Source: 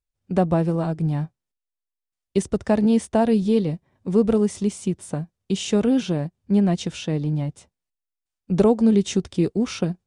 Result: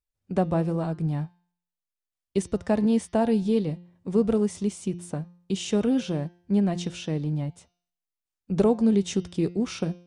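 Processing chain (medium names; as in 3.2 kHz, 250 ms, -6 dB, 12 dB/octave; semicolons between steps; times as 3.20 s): de-hum 175.3 Hz, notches 35; trim -4 dB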